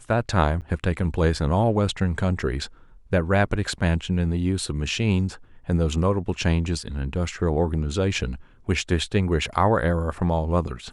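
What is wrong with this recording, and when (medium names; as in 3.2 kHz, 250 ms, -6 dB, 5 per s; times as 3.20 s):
0.61–0.62 s: dropout 8.2 ms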